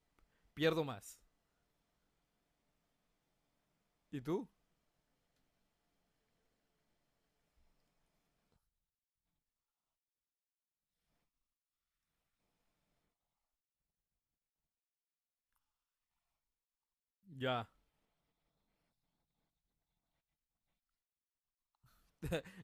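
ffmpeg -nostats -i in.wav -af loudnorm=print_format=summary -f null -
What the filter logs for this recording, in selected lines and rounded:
Input Integrated:    -41.5 LUFS
Input True Peak:     -21.5 dBTP
Input LRA:             7.4 LU
Input Threshold:     -52.8 LUFS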